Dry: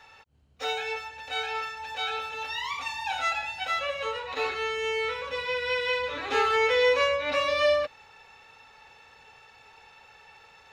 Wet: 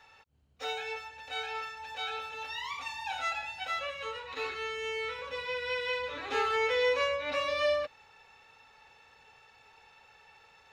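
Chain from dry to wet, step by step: 3.89–5.19 bell 670 Hz -12.5 dB 0.41 oct; gain -5.5 dB

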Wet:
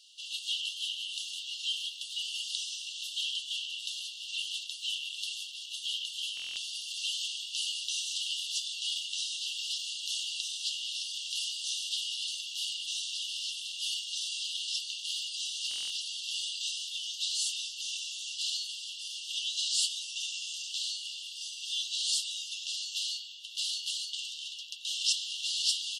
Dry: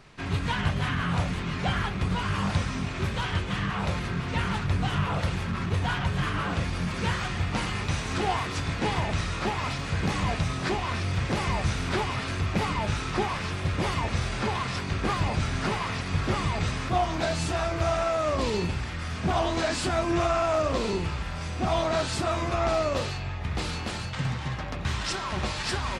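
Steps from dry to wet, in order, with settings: brick-wall FIR high-pass 2700 Hz; stuck buffer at 6.35/15.69, samples 1024, times 8; gain +5.5 dB

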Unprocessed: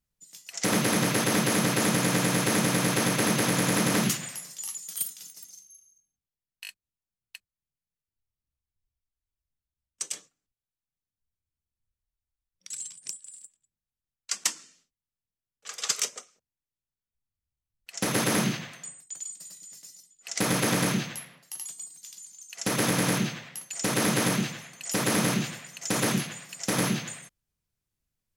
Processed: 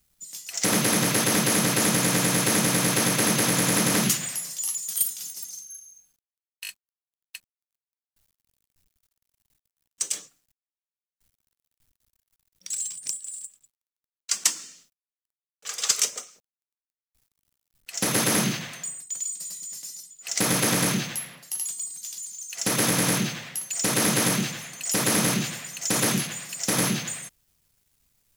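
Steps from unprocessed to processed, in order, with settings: G.711 law mismatch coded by mu; high shelf 4200 Hz +6.5 dB

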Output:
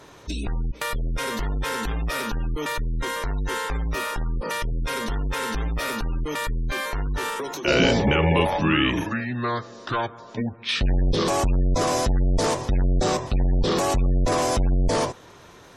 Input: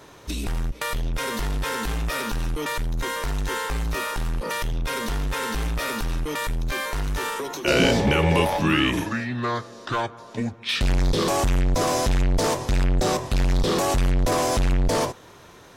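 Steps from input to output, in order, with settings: spectral gate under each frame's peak -30 dB strong

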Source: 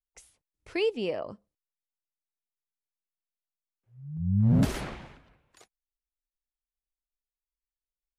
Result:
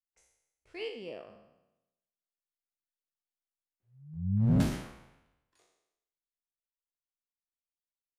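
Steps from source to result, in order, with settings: spectral trails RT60 0.88 s; Doppler pass-by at 3.33, 5 m/s, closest 5.1 m; upward expander 1.5:1, over -41 dBFS

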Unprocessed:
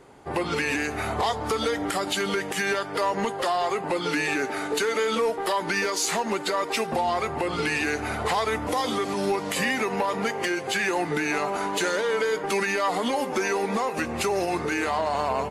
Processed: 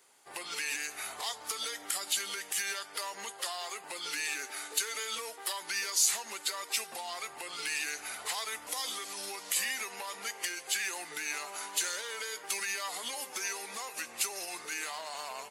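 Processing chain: differentiator; gain +2 dB

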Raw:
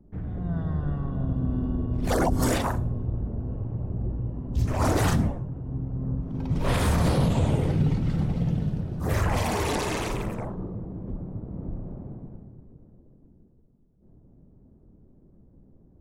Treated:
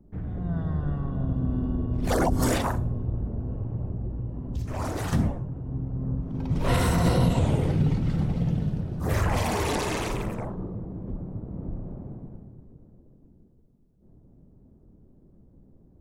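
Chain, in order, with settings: 3.9–5.13 compressor, threshold -27 dBFS, peak gain reduction 8.5 dB; 6.68–7.39 ripple EQ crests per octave 2, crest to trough 8 dB

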